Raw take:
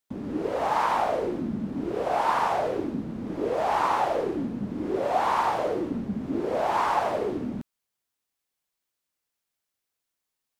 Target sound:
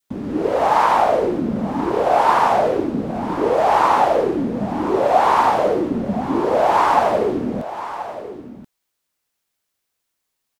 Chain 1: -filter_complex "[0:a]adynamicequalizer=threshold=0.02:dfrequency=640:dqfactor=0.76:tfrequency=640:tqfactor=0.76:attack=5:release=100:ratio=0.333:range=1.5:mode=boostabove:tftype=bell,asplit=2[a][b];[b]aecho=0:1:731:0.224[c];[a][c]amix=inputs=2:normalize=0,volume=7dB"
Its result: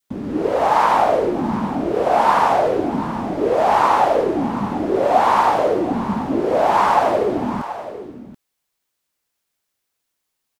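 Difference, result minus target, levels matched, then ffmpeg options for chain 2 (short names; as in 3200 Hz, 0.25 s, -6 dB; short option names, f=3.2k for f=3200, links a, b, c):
echo 0.3 s early
-filter_complex "[0:a]adynamicequalizer=threshold=0.02:dfrequency=640:dqfactor=0.76:tfrequency=640:tqfactor=0.76:attack=5:release=100:ratio=0.333:range=1.5:mode=boostabove:tftype=bell,asplit=2[a][b];[b]aecho=0:1:1031:0.224[c];[a][c]amix=inputs=2:normalize=0,volume=7dB"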